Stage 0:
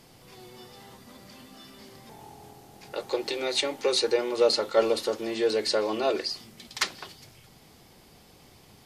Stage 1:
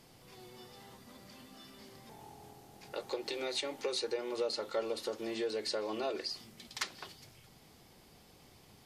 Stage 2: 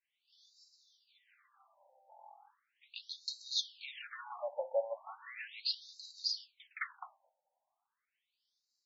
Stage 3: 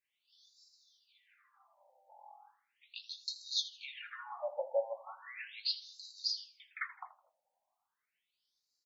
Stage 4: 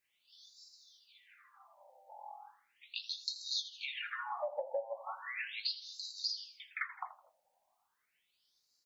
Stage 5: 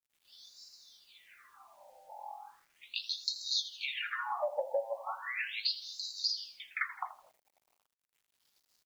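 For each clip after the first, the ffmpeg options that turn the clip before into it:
-af "acompressor=threshold=-29dB:ratio=2.5,volume=-5.5dB"
-af "agate=range=-33dB:threshold=-46dB:ratio=3:detection=peak,asoftclip=type=hard:threshold=-29.5dB,afftfilt=real='re*between(b*sr/1024,670*pow(5400/670,0.5+0.5*sin(2*PI*0.37*pts/sr))/1.41,670*pow(5400/670,0.5+0.5*sin(2*PI*0.37*pts/sr))*1.41)':imag='im*between(b*sr/1024,670*pow(5400/670,0.5+0.5*sin(2*PI*0.37*pts/sr))/1.41,670*pow(5400/670,0.5+0.5*sin(2*PI*0.37*pts/sr))*1.41)':win_size=1024:overlap=0.75,volume=4.5dB"
-filter_complex "[0:a]asplit=2[a][b];[b]adelay=20,volume=-11dB[c];[a][c]amix=inputs=2:normalize=0,aecho=1:1:81|162|243:0.15|0.0509|0.0173"
-af "acompressor=threshold=-41dB:ratio=6,volume=6.5dB"
-af "acrusher=bits=11:mix=0:aa=0.000001,volume=4dB"

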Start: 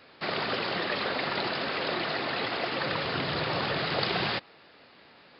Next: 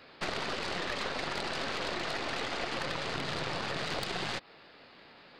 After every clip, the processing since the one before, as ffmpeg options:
-af "acompressor=threshold=-32dB:ratio=20,aeval=exprs='0.0708*(cos(1*acos(clip(val(0)/0.0708,-1,1)))-cos(1*PI/2))+0.0178*(cos(4*acos(clip(val(0)/0.0708,-1,1)))-cos(4*PI/2))':c=same"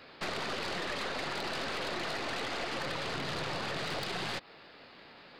-af "asoftclip=type=tanh:threshold=-28.5dB,volume=1.5dB"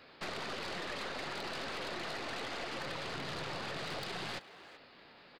-filter_complex "[0:a]asplit=2[a][b];[b]adelay=380,highpass=300,lowpass=3.4k,asoftclip=type=hard:threshold=-36.5dB,volume=-12dB[c];[a][c]amix=inputs=2:normalize=0,volume=-4.5dB"

